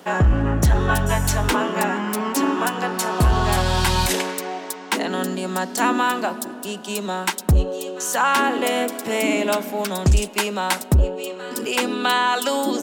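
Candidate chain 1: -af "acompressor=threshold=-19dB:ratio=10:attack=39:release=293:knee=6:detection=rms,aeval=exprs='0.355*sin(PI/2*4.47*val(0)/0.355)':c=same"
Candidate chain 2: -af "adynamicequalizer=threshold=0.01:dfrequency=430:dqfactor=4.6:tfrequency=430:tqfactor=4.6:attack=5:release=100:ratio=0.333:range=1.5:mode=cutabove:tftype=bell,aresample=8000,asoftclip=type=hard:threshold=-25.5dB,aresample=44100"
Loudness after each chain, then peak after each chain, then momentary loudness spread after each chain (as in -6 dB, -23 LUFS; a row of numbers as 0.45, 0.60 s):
-13.0, -28.5 LUFS; -9.0, -19.5 dBFS; 3, 4 LU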